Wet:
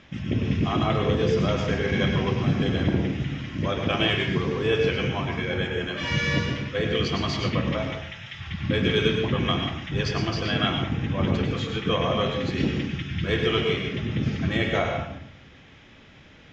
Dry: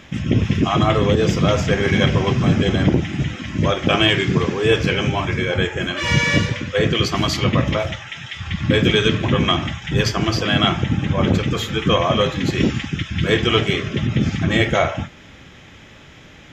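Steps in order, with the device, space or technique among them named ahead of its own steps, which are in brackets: bathroom (reverberation RT60 0.55 s, pre-delay 95 ms, DRR 3.5 dB); low-pass 5.8 kHz 24 dB/octave; trim -8.5 dB

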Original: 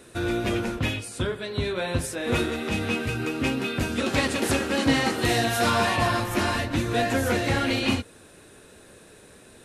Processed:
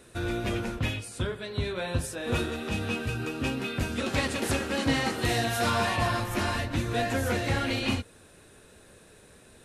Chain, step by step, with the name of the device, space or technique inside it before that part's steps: low shelf boost with a cut just above (bass shelf 95 Hz +5.5 dB; peaking EQ 310 Hz -2.5 dB 0.75 oct); 1.89–3.54 s: band-stop 2.1 kHz, Q 8; trim -4 dB

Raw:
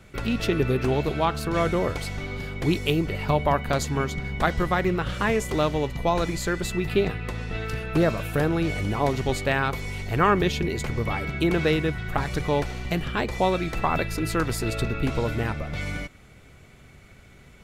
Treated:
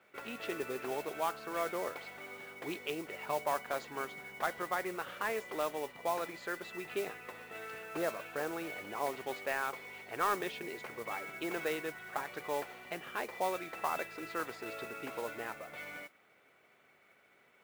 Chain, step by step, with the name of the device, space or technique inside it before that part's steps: carbon microphone (band-pass 490–2600 Hz; saturation -12 dBFS, distortion -21 dB; modulation noise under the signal 15 dB); trim -8.5 dB

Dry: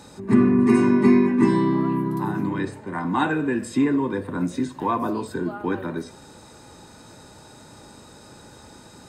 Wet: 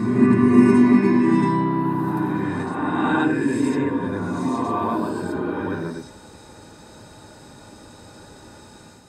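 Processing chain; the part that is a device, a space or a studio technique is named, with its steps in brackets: reverse reverb (reverse; reverberation RT60 2.1 s, pre-delay 70 ms, DRR -4.5 dB; reverse); trim -4 dB

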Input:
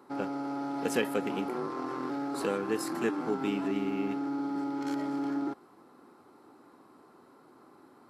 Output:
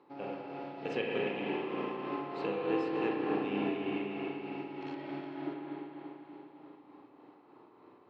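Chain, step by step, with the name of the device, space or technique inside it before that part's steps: combo amplifier with spring reverb and tremolo (spring tank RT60 4 s, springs 34/49 ms, chirp 35 ms, DRR -5 dB; tremolo 3.3 Hz, depth 37%; cabinet simulation 93–4000 Hz, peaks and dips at 230 Hz -8 dB, 1.4 kHz -10 dB, 2.6 kHz +5 dB); trim -5 dB

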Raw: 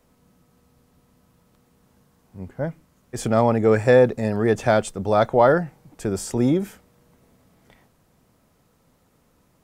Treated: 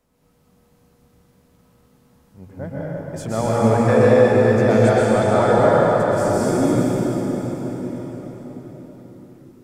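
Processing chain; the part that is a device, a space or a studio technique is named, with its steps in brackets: cathedral (reverberation RT60 5.3 s, pre-delay 115 ms, DRR -9 dB); trim -6 dB

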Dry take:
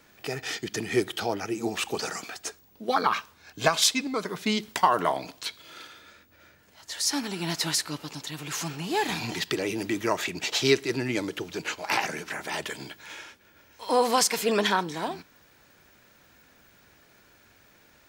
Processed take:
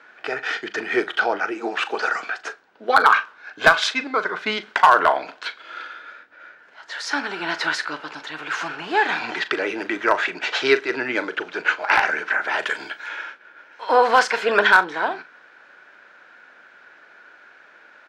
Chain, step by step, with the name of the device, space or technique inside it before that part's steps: 1.51–2.15 s: high-pass 190 Hz 12 dB/octave; 12.59–13.09 s: treble shelf 5.2 kHz +11.5 dB; megaphone (band-pass 470–2600 Hz; peaking EQ 1.5 kHz +11.5 dB 0.32 oct; hard clipper -13 dBFS, distortion -17 dB; doubling 39 ms -13.5 dB); trim +8 dB

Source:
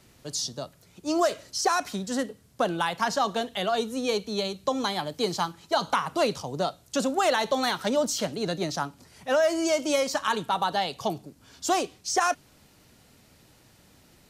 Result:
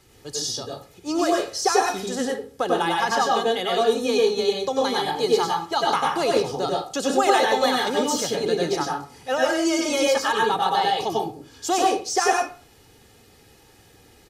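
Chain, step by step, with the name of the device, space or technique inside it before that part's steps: microphone above a desk (comb 2.4 ms, depth 56%; reverberation RT60 0.40 s, pre-delay 91 ms, DRR -2 dB)

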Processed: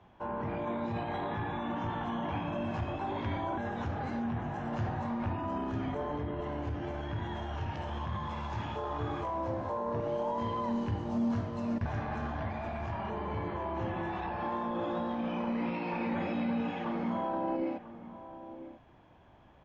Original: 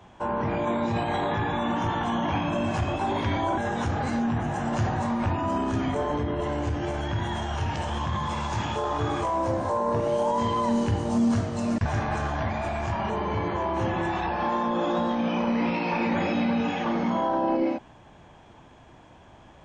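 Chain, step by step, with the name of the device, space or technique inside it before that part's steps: shout across a valley (distance through air 170 m; echo from a far wall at 170 m, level -13 dB); trim -8 dB

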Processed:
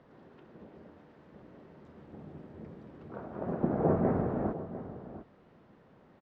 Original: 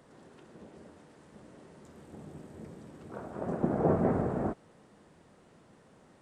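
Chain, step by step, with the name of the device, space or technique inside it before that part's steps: shout across a valley (distance through air 250 m; echo from a far wall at 120 m, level -13 dB)

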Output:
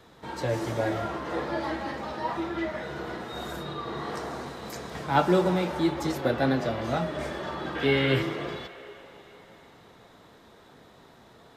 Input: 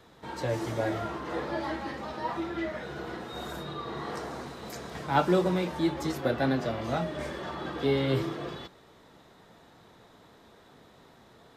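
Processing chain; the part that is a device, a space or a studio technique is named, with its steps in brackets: 7.75–8.22 s: high-order bell 2.1 kHz +8.5 dB 1.3 oct; filtered reverb send (on a send: high-pass 430 Hz 24 dB/octave + low-pass 3 kHz + reverberation RT60 3.9 s, pre-delay 52 ms, DRR 10 dB); on the sum: trim +2 dB

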